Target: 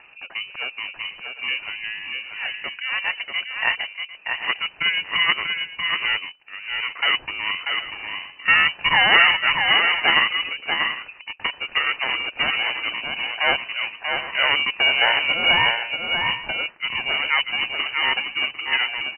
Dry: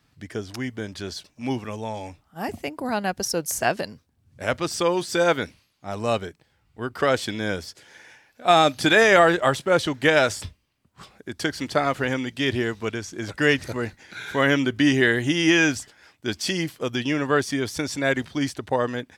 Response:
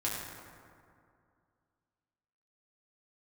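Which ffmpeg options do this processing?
-filter_complex "[0:a]acompressor=mode=upward:threshold=-35dB:ratio=2.5,aeval=exprs='val(0)*sin(2*PI*440*n/s)':c=same,asplit=2[a][b];[b]aecho=0:1:639|751:0.562|0.178[c];[a][c]amix=inputs=2:normalize=0,lowpass=f=2.6k:t=q:w=0.5098,lowpass=f=2.6k:t=q:w=0.6013,lowpass=f=2.6k:t=q:w=0.9,lowpass=f=2.6k:t=q:w=2.563,afreqshift=-3000,volume=3dB"

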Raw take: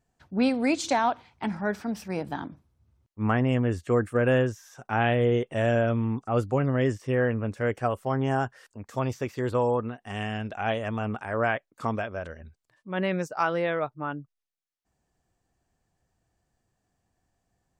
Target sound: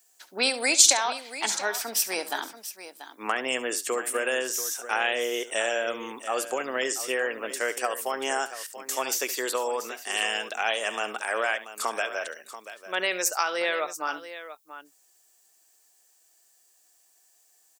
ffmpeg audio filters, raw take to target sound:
-filter_complex "[0:a]highpass=f=350:w=0.5412,highpass=f=350:w=1.3066,highshelf=f=4.2k:g=6,acompressor=threshold=-26dB:ratio=6,crystalizer=i=8.5:c=0,asplit=2[a][b];[b]aecho=0:1:70|685:0.178|0.224[c];[a][c]amix=inputs=2:normalize=0,volume=-1dB"

